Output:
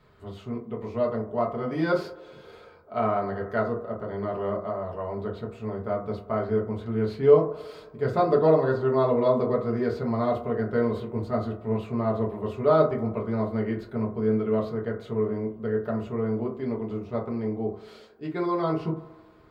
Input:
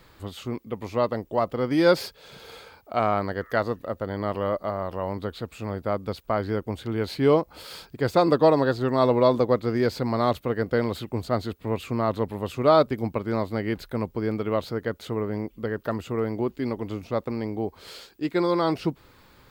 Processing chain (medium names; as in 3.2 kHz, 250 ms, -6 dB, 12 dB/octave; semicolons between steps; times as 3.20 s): low-pass 2.3 kHz 6 dB/octave; feedback echo behind a band-pass 91 ms, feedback 71%, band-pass 650 Hz, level -18 dB; reverberation RT60 0.40 s, pre-delay 4 ms, DRR -3 dB; trim -8 dB